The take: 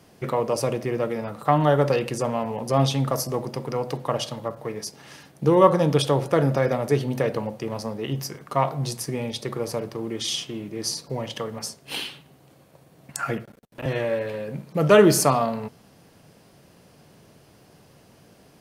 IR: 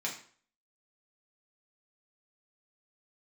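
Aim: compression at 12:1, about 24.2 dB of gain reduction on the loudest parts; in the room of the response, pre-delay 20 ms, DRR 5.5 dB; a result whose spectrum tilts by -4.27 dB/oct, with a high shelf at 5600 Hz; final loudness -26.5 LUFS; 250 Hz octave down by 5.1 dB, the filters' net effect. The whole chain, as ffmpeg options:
-filter_complex "[0:a]equalizer=f=250:t=o:g=-8,highshelf=f=5.6k:g=-7,acompressor=threshold=-36dB:ratio=12,asplit=2[a][b];[1:a]atrim=start_sample=2205,adelay=20[c];[b][c]afir=irnorm=-1:irlink=0,volume=-9.5dB[d];[a][d]amix=inputs=2:normalize=0,volume=14dB"

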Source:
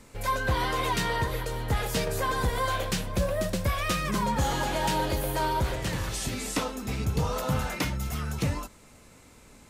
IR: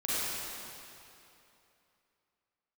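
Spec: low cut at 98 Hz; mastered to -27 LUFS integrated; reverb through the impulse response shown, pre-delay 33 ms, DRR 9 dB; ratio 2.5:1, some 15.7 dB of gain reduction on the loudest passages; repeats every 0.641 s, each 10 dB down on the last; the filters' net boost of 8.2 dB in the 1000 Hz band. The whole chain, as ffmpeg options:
-filter_complex "[0:a]highpass=98,equalizer=f=1k:t=o:g=9,acompressor=threshold=-41dB:ratio=2.5,aecho=1:1:641|1282|1923|2564:0.316|0.101|0.0324|0.0104,asplit=2[a][b];[1:a]atrim=start_sample=2205,adelay=33[c];[b][c]afir=irnorm=-1:irlink=0,volume=-17.5dB[d];[a][d]amix=inputs=2:normalize=0,volume=10dB"

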